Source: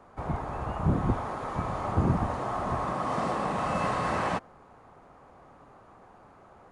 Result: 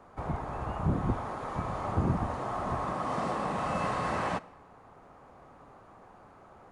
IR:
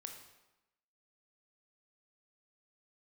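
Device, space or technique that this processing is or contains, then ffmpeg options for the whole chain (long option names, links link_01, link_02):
ducked reverb: -filter_complex "[0:a]asplit=3[link_01][link_02][link_03];[1:a]atrim=start_sample=2205[link_04];[link_02][link_04]afir=irnorm=-1:irlink=0[link_05];[link_03]apad=whole_len=295931[link_06];[link_05][link_06]sidechaincompress=threshold=-32dB:ratio=8:attack=8.5:release=972,volume=0dB[link_07];[link_01][link_07]amix=inputs=2:normalize=0,volume=-4dB"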